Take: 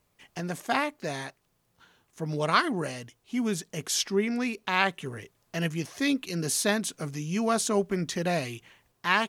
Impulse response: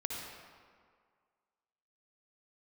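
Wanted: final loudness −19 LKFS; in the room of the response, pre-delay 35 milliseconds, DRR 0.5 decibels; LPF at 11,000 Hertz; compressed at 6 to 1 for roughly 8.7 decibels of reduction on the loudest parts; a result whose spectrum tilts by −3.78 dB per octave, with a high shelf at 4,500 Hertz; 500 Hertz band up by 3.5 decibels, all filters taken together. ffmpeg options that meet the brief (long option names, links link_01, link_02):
-filter_complex "[0:a]lowpass=11000,equalizer=frequency=500:width_type=o:gain=4.5,highshelf=frequency=4500:gain=6.5,acompressor=threshold=-26dB:ratio=6,asplit=2[link_01][link_02];[1:a]atrim=start_sample=2205,adelay=35[link_03];[link_02][link_03]afir=irnorm=-1:irlink=0,volume=-2.5dB[link_04];[link_01][link_04]amix=inputs=2:normalize=0,volume=10dB"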